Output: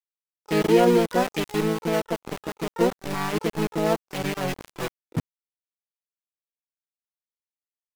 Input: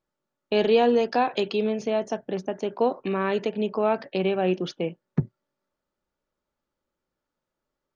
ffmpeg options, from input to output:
-filter_complex "[0:a]aecho=1:1:4.3:0.71,aeval=exprs='val(0)*gte(abs(val(0)),0.0841)':c=same,asplit=3[s0][s1][s2];[s1]asetrate=33038,aresample=44100,atempo=1.33484,volume=0.891[s3];[s2]asetrate=88200,aresample=44100,atempo=0.5,volume=0.2[s4];[s0][s3][s4]amix=inputs=3:normalize=0,volume=0.562"

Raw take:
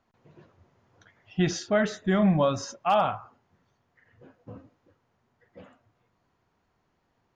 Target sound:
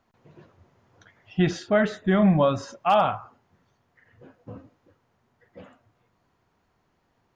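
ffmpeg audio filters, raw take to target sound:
-filter_complex "[0:a]asettb=1/sr,asplit=3[s0][s1][s2];[s0]atrim=end=1.394[s3];[s1]atrim=start=1.39:end=2.73,asetpts=PTS-STARTPTS,afade=t=in:d=0.004:c=qsin,afade=t=out:st=1.336:d=0.004:c=qsin,equalizer=f=6000:w=1.5:g=-10[s4];[s2]atrim=start=2.726[s5];[s3][s4]acrossfade=d=0.004:c1=hsin:c2=qsin[s6];[s6][s5]acrossfade=d=0.004:c1=qsin:c2=hsin,volume=1.41"

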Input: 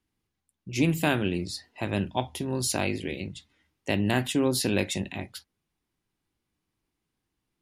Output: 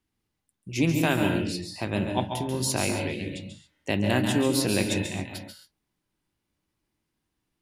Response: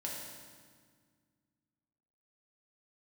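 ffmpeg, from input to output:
-filter_complex "[0:a]asplit=2[s0][s1];[1:a]atrim=start_sample=2205,atrim=end_sample=6615,adelay=138[s2];[s1][s2]afir=irnorm=-1:irlink=0,volume=0.668[s3];[s0][s3]amix=inputs=2:normalize=0"

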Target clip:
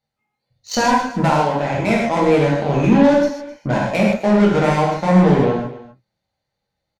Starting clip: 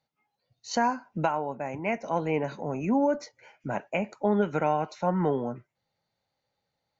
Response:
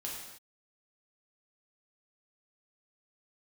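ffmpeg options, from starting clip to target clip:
-filter_complex "[0:a]lowshelf=f=110:g=10.5,asplit=2[s0][s1];[s1]alimiter=limit=0.112:level=0:latency=1,volume=1[s2];[s0][s2]amix=inputs=2:normalize=0,asoftclip=type=tanh:threshold=0.0841,aeval=exprs='0.0841*(cos(1*acos(clip(val(0)/0.0841,-1,1)))-cos(1*PI/2))+0.0237*(cos(3*acos(clip(val(0)/0.0841,-1,1)))-cos(3*PI/2))':c=same,aecho=1:1:258:0.141[s3];[1:a]atrim=start_sample=2205,afade=t=out:st=0.15:d=0.01,atrim=end_sample=7056,asetrate=27342,aresample=44100[s4];[s3][s4]afir=irnorm=-1:irlink=0,volume=2.82"

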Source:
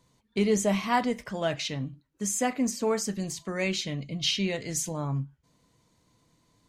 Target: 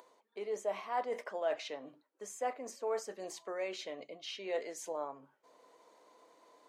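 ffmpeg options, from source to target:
-af "areverse,acompressor=threshold=0.00891:ratio=8,areverse,tiltshelf=f=1500:g=10,acompressor=mode=upward:threshold=0.002:ratio=2.5,highpass=f=480:w=0.5412,highpass=f=480:w=1.3066,volume=1.88"

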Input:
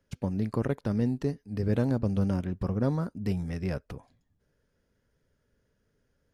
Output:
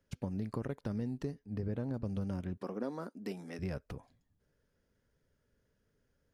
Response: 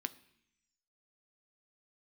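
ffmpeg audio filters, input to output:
-filter_complex "[0:a]asettb=1/sr,asplit=3[s0][s1][s2];[s0]atrim=end=1.394[s3];[s1]atrim=start=1.39:end=1.94,asetpts=PTS-STARTPTS,afade=t=in:d=0.004:c=qsin,afade=t=out:st=0.546:d=0.004:c=qsin,highshelf=f=3100:g=-10[s4];[s2]atrim=start=1.936[s5];[s3][s4]acrossfade=d=0.004:c1=hsin:c2=qsin[s6];[s6][s5]acrossfade=d=0.004:c1=qsin:c2=hsin,asettb=1/sr,asplit=3[s7][s8][s9];[s7]atrim=end=2.574[s10];[s8]atrim=start=2.57:end=3.59,asetpts=PTS-STARTPTS,afade=t=in:d=0.004:c=qsin,afade=t=out:st=1.016:d=0.004:c=qsin,highpass=f=240:w=0.5412,highpass=f=240:w=1.3066[s11];[s9]atrim=start=3.586[s12];[s10][s11]acrossfade=d=0.004:c1=hsin:c2=qsin[s13];[s13][s12]acrossfade=d=0.004:c1=qsin:c2=hsin,acompressor=threshold=0.0316:ratio=5,volume=0.668"

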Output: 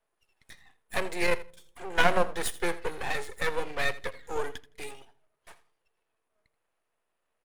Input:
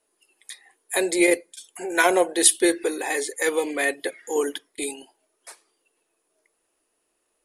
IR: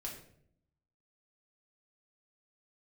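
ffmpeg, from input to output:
-filter_complex "[0:a]acrossover=split=470 2500:gain=0.0708 1 0.158[s0][s1][s2];[s0][s1][s2]amix=inputs=3:normalize=0,aeval=exprs='max(val(0),0)':c=same,aecho=1:1:82|164:0.141|0.0226,asplit=2[s3][s4];[1:a]atrim=start_sample=2205,lowpass=1100[s5];[s4][s5]afir=irnorm=-1:irlink=0,volume=0.133[s6];[s3][s6]amix=inputs=2:normalize=0,volume=1.19"

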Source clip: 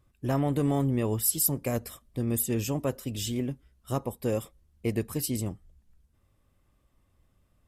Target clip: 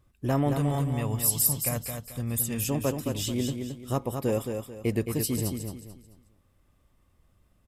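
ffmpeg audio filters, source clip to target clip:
-filter_complex "[0:a]asettb=1/sr,asplit=3[s0][s1][s2];[s0]atrim=end=0.534[s3];[s1]atrim=start=0.53:end=2.69,asetpts=PTS-STARTPTS,afade=t=in:d=0.004:c=qsin,afade=t=out:st=2.156:d=0.004:c=qsin,equalizer=f=350:t=o:w=1.1:g=-13[s4];[s2]atrim=start=2.686[s5];[s3][s4]acrossfade=d=0.004:c1=hsin:c2=qsin[s6];[s6][s5]acrossfade=d=0.004:c1=qsin:c2=hsin,aecho=1:1:219|438|657|876:0.501|0.16|0.0513|0.0164,volume=1.19"

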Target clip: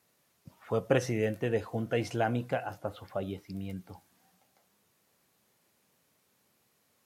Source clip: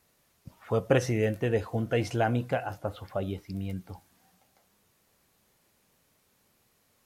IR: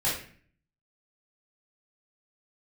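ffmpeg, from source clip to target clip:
-af "highpass=110,volume=0.75"

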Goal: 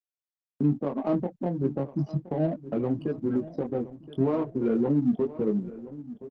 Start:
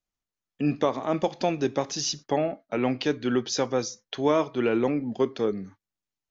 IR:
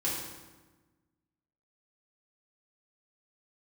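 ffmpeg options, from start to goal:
-filter_complex "[0:a]asplit=3[s0][s1][s2];[s0]afade=t=out:st=0.78:d=0.02[s3];[s1]highpass=f=95:w=0.5412,highpass=f=95:w=1.3066,afade=t=in:st=0.78:d=0.02,afade=t=out:st=3.2:d=0.02[s4];[s2]afade=t=in:st=3.2:d=0.02[s5];[s3][s4][s5]amix=inputs=3:normalize=0,aemphasis=mode=reproduction:type=50kf,afftfilt=real='re*gte(hypot(re,im),0.0708)':imag='im*gte(hypot(re,im),0.0708)':win_size=1024:overlap=0.75,agate=range=0.00126:threshold=0.00355:ratio=16:detection=peak,equalizer=f=160:t=o:w=2.8:g=13.5,acompressor=threshold=0.112:ratio=5,alimiter=limit=0.0794:level=0:latency=1:release=483,flanger=delay=18:depth=4.7:speed=0.34,adynamicsmooth=sensitivity=7.5:basefreq=1000,asplit=2[s6][s7];[s7]adelay=1020,lowpass=f=3900:p=1,volume=0.158,asplit=2[s8][s9];[s9]adelay=1020,lowpass=f=3900:p=1,volume=0.41,asplit=2[s10][s11];[s11]adelay=1020,lowpass=f=3900:p=1,volume=0.41,asplit=2[s12][s13];[s13]adelay=1020,lowpass=f=3900:p=1,volume=0.41[s14];[s6][s8][s10][s12][s14]amix=inputs=5:normalize=0,volume=2.51" -ar 48000 -c:a libopus -b:a 16k

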